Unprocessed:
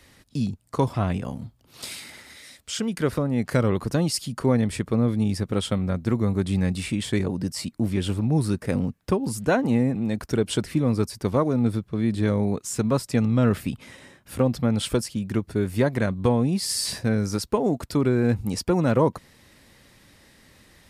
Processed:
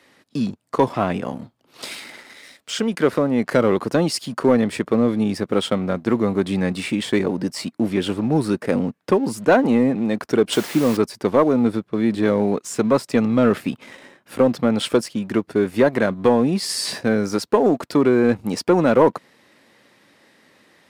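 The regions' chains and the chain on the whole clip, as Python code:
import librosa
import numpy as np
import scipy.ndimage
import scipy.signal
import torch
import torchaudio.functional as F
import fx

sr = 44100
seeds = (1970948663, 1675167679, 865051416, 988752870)

y = fx.chain(x, sr, fx.bass_treble(bass_db=-1, treble_db=4),
    fx.quant_dither(seeds[0], bits=6, dither='triangular'), at=(10.52, 10.97))
y = scipy.signal.sosfilt(scipy.signal.butter(2, 260.0, 'highpass', fs=sr, output='sos'), y)
y = fx.high_shelf(y, sr, hz=4700.0, db=-11.5)
y = fx.leveller(y, sr, passes=1)
y = y * 10.0 ** (5.0 / 20.0)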